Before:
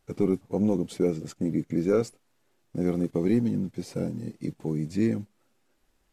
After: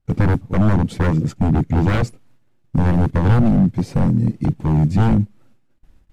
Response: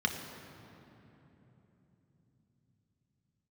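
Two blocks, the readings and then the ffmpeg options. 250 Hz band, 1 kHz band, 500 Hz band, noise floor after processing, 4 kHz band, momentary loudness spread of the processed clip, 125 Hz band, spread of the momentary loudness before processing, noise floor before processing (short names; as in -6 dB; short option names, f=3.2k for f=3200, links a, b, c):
+8.0 dB, +18.0 dB, +1.5 dB, -58 dBFS, n/a, 5 LU, +17.0 dB, 10 LU, -70 dBFS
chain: -af "aeval=exprs='0.0531*(abs(mod(val(0)/0.0531+3,4)-2)-1)':c=same,bass=f=250:g=14,treble=f=4k:g=-6,bandreject=f=410:w=12,agate=range=-20dB:threshold=-56dB:ratio=16:detection=peak,volume=8dB"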